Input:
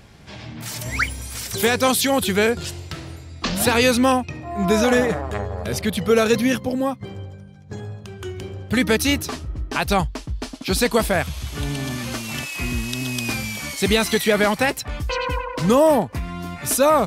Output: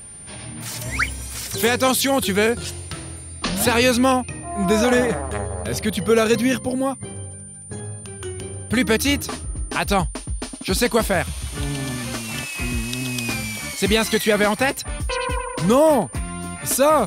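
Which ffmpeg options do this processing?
ffmpeg -i in.wav -af "aeval=exprs='val(0)+0.0141*sin(2*PI*9200*n/s)':channel_layout=same" out.wav

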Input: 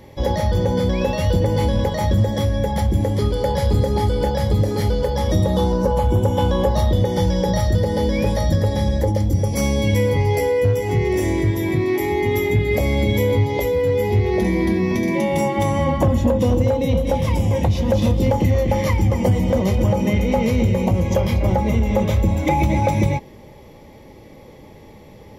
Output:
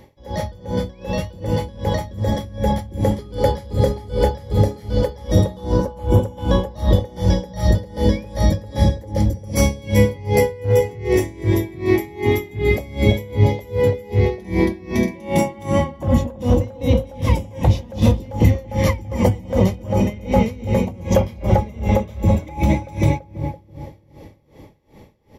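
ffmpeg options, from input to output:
ffmpeg -i in.wav -filter_complex "[0:a]dynaudnorm=framelen=300:gausssize=11:maxgain=11.5dB,asplit=2[link_01][link_02];[link_02]adelay=334,lowpass=frequency=850:poles=1,volume=-7dB,asplit=2[link_03][link_04];[link_04]adelay=334,lowpass=frequency=850:poles=1,volume=0.49,asplit=2[link_05][link_06];[link_06]adelay=334,lowpass=frequency=850:poles=1,volume=0.49,asplit=2[link_07][link_08];[link_08]adelay=334,lowpass=frequency=850:poles=1,volume=0.49,asplit=2[link_09][link_10];[link_10]adelay=334,lowpass=frequency=850:poles=1,volume=0.49,asplit=2[link_11][link_12];[link_12]adelay=334,lowpass=frequency=850:poles=1,volume=0.49[link_13];[link_03][link_05][link_07][link_09][link_11][link_13]amix=inputs=6:normalize=0[link_14];[link_01][link_14]amix=inputs=2:normalize=0,aeval=exprs='val(0)*pow(10,-24*(0.5-0.5*cos(2*PI*2.6*n/s))/20)':channel_layout=same,volume=-1dB" out.wav

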